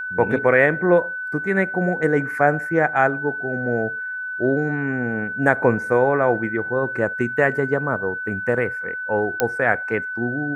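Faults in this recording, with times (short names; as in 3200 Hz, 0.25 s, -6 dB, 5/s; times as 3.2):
tone 1500 Hz -26 dBFS
9.4 pop -3 dBFS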